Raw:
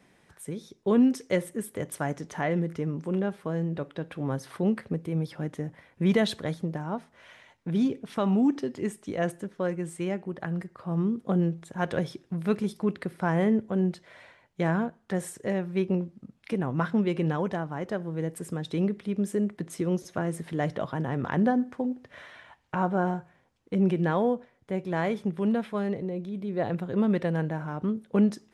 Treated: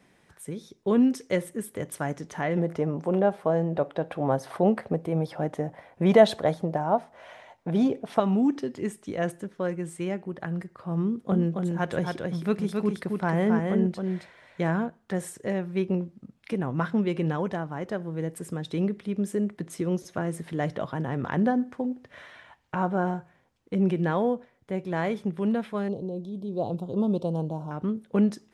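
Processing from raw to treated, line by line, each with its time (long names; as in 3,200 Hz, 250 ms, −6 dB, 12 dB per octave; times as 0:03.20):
0:02.57–0:08.20: parametric band 700 Hz +14.5 dB 1.1 octaves
0:11.05–0:14.73: single-tap delay 270 ms −4 dB
0:25.88–0:27.71: Chebyshev band-stop filter 900–3,700 Hz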